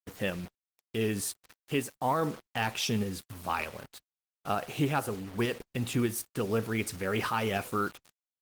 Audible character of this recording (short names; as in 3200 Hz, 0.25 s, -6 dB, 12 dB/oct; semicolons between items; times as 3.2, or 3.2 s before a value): tremolo saw up 3.3 Hz, depth 30%; a quantiser's noise floor 8-bit, dither none; Opus